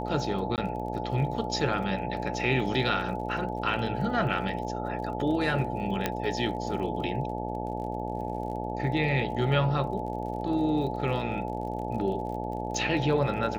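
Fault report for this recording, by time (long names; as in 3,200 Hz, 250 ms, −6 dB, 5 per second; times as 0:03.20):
mains buzz 60 Hz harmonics 15 −34 dBFS
surface crackle 39 per second −39 dBFS
whistle 860 Hz −36 dBFS
0:00.56–0:00.58: drop-out 18 ms
0:06.06: click −11 dBFS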